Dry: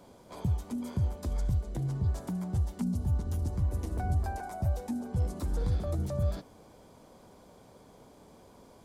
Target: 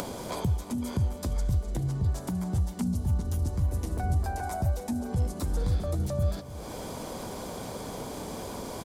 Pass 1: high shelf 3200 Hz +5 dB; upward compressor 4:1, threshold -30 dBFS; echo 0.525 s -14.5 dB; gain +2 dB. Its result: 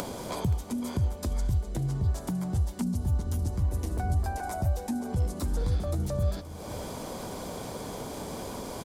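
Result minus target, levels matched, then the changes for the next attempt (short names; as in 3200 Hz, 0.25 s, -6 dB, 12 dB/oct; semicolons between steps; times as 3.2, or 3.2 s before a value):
echo 0.229 s late
change: echo 0.296 s -14.5 dB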